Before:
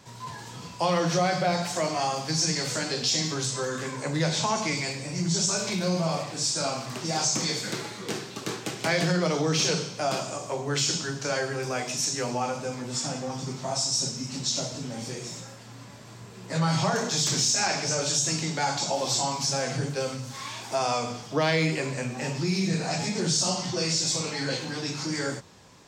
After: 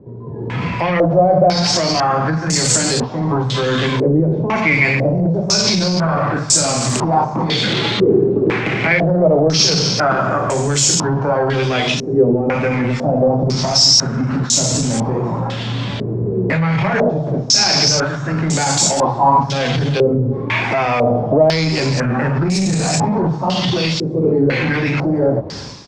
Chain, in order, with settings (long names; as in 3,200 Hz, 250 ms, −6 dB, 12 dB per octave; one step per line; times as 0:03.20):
low-shelf EQ 380 Hz +7.5 dB
in parallel at +1 dB: downward compressor, threshold −33 dBFS, peak gain reduction 15.5 dB
on the sum: brickwall limiter −19 dBFS, peak gain reduction 10 dB
automatic gain control gain up to 13.5 dB
soft clipping −10.5 dBFS, distortion −16 dB
on a send: single-tap delay 331 ms −18.5 dB
on the sum: low-pass on a step sequencer 2 Hz 410–7,800 Hz
level −1.5 dB